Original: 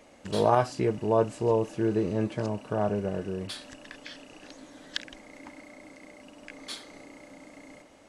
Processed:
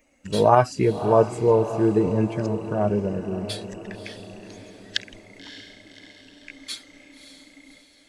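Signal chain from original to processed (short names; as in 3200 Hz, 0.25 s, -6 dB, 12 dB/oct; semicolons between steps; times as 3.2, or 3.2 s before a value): per-bin expansion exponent 1.5; diffused feedback echo 0.586 s, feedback 52%, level -12 dB; gain +8 dB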